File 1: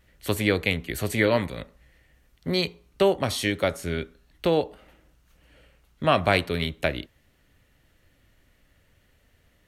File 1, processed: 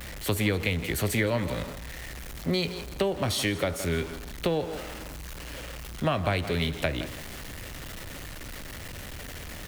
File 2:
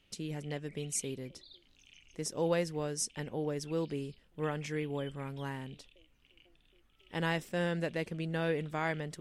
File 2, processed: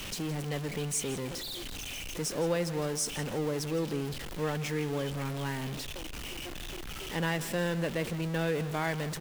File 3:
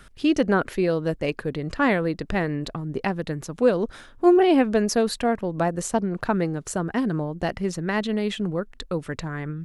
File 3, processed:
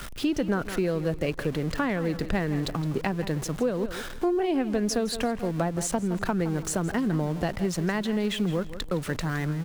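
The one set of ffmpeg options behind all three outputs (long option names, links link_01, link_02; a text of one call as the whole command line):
ffmpeg -i in.wav -filter_complex "[0:a]aeval=exprs='val(0)+0.5*0.02*sgn(val(0))':channel_layout=same,aecho=1:1:165|330|495:0.168|0.042|0.0105,acrossover=split=160[link_01][link_02];[link_02]acompressor=threshold=-24dB:ratio=6[link_03];[link_01][link_03]amix=inputs=2:normalize=0" out.wav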